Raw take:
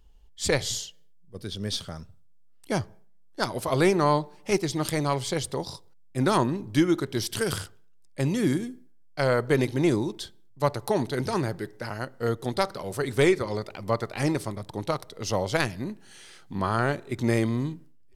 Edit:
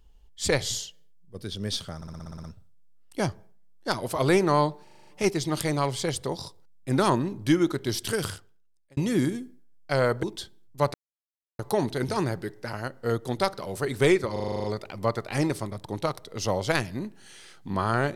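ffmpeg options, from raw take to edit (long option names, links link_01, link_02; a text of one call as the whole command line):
ffmpeg -i in.wav -filter_complex "[0:a]asplit=26[link_01][link_02][link_03][link_04][link_05][link_06][link_07][link_08][link_09][link_10][link_11][link_12][link_13][link_14][link_15][link_16][link_17][link_18][link_19][link_20][link_21][link_22][link_23][link_24][link_25][link_26];[link_01]atrim=end=2.022[link_27];[link_02]atrim=start=1.958:end=2.022[link_28];[link_03]atrim=start=1.958:end=2.022[link_29];[link_04]atrim=start=1.958:end=2.022[link_30];[link_05]atrim=start=1.958:end=2.022[link_31];[link_06]atrim=start=1.958:end=2.022[link_32];[link_07]atrim=start=1.958:end=2.022[link_33];[link_08]atrim=start=1.958:end=2.022[link_34];[link_09]atrim=start=1.958:end=4.392[link_35];[link_10]atrim=start=4.348:end=4.392[link_36];[link_11]atrim=start=4.348:end=4.392[link_37];[link_12]atrim=start=4.348:end=4.392[link_38];[link_13]atrim=start=4.348:end=4.392[link_39];[link_14]atrim=start=4.348:end=4.392[link_40];[link_15]atrim=start=4.348:end=8.25,asetpts=PTS-STARTPTS,afade=type=out:start_time=3.032:duration=0.87[link_41];[link_16]atrim=start=8.25:end=9.512,asetpts=PTS-STARTPTS,afade=type=in:duration=0.004:curve=hsin[link_42];[link_17]atrim=start=10.048:end=10.76,asetpts=PTS-STARTPTS,afade=type=out:start_time=0.708:duration=0.004:curve=hsin,apad=pad_dur=0.65[link_43];[link_18]atrim=start=10.76:end=13.532,asetpts=PTS-STARTPTS,afade=type=in:duration=0.004:curve=hsin[link_44];[link_19]atrim=start=13.488:end=13.532[link_45];[link_20]atrim=start=13.488:end=13.532[link_46];[link_21]atrim=start=13.488:end=13.532[link_47];[link_22]atrim=start=13.488:end=13.532[link_48];[link_23]atrim=start=13.488:end=13.532[link_49];[link_24]atrim=start=13.488:end=13.532[link_50];[link_25]atrim=start=13.488:end=13.532[link_51];[link_26]atrim=start=13.488[link_52];[link_27][link_28]acrossfade=duration=0.004:curve1=hsin:curve2=hsin[link_53];[link_53][link_29]acrossfade=duration=0.004:curve1=hsin:curve2=hsin[link_54];[link_54][link_30]acrossfade=duration=0.004:curve1=hsin:curve2=hsin[link_55];[link_55][link_31]acrossfade=duration=0.004:curve1=hsin:curve2=hsin[link_56];[link_56][link_32]acrossfade=duration=0.004:curve1=hsin:curve2=hsin[link_57];[link_57][link_33]acrossfade=duration=0.004:curve1=hsin:curve2=hsin[link_58];[link_58][link_34]acrossfade=duration=0.004:curve1=hsin:curve2=hsin[link_59];[link_59][link_35]acrossfade=duration=0.004:curve1=hsin:curve2=hsin[link_60];[link_60][link_36]acrossfade=duration=0.004:curve1=hsin:curve2=hsin[link_61];[link_61][link_37]acrossfade=duration=0.004:curve1=hsin:curve2=hsin[link_62];[link_62][link_38]acrossfade=duration=0.004:curve1=hsin:curve2=hsin[link_63];[link_63][link_39]acrossfade=duration=0.004:curve1=hsin:curve2=hsin[link_64];[link_64][link_40]acrossfade=duration=0.004:curve1=hsin:curve2=hsin[link_65];[link_41][link_42]concat=n=2:v=0:a=1[link_66];[link_65][link_66]acrossfade=duration=0.004:curve1=hsin:curve2=hsin[link_67];[link_43][link_44]concat=n=2:v=0:a=1[link_68];[link_67][link_68]acrossfade=duration=0.004:curve1=hsin:curve2=hsin[link_69];[link_69][link_45]acrossfade=duration=0.004:curve1=hsin:curve2=hsin[link_70];[link_70][link_46]acrossfade=duration=0.004:curve1=hsin:curve2=hsin[link_71];[link_71][link_47]acrossfade=duration=0.004:curve1=hsin:curve2=hsin[link_72];[link_72][link_48]acrossfade=duration=0.004:curve1=hsin:curve2=hsin[link_73];[link_73][link_49]acrossfade=duration=0.004:curve1=hsin:curve2=hsin[link_74];[link_74][link_50]acrossfade=duration=0.004:curve1=hsin:curve2=hsin[link_75];[link_75][link_51]acrossfade=duration=0.004:curve1=hsin:curve2=hsin[link_76];[link_76][link_52]acrossfade=duration=0.004:curve1=hsin:curve2=hsin" out.wav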